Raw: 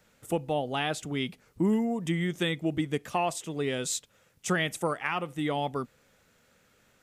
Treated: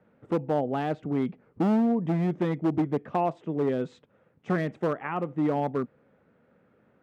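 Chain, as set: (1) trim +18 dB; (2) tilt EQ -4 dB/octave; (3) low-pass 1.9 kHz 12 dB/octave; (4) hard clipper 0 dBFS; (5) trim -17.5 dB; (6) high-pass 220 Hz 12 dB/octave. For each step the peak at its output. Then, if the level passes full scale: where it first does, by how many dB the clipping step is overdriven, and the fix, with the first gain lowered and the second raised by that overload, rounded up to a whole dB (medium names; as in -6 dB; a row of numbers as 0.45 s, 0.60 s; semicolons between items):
+4.0 dBFS, +9.5 dBFS, +9.5 dBFS, 0.0 dBFS, -17.5 dBFS, -13.5 dBFS; step 1, 9.5 dB; step 1 +8 dB, step 5 -7.5 dB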